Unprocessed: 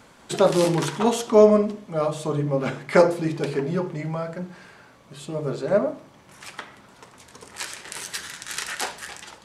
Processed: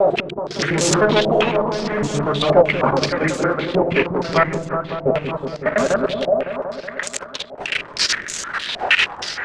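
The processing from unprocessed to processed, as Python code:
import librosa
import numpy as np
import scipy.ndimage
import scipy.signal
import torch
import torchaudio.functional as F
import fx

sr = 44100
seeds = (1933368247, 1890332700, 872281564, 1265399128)

p1 = fx.block_reorder(x, sr, ms=101.0, group=5)
p2 = fx.highpass(p1, sr, hz=54.0, slope=6)
p3 = fx.tilt_shelf(p2, sr, db=-5.5, hz=1300.0)
p4 = np.clip(p3, -10.0 ** (-16.0 / 20.0), 10.0 ** (-16.0 / 20.0))
p5 = p3 + F.gain(torch.from_numpy(p4), -7.5).numpy()
p6 = fx.level_steps(p5, sr, step_db=14)
p7 = fx.leveller(p6, sr, passes=5)
p8 = fx.rotary(p7, sr, hz=0.65)
p9 = fx.rider(p8, sr, range_db=10, speed_s=2.0)
p10 = p9 + fx.echo_opening(p9, sr, ms=186, hz=400, octaves=1, feedback_pct=70, wet_db=-3, dry=0)
p11 = fx.filter_held_lowpass(p10, sr, hz=6.4, low_hz=710.0, high_hz=7000.0)
y = F.gain(torch.from_numpy(p11), -5.5).numpy()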